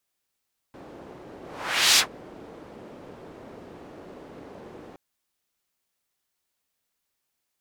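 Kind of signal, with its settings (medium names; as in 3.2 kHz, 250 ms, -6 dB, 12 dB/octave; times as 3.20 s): whoosh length 4.22 s, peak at 1.24 s, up 0.60 s, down 0.11 s, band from 400 Hz, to 4.8 kHz, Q 1.1, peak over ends 27 dB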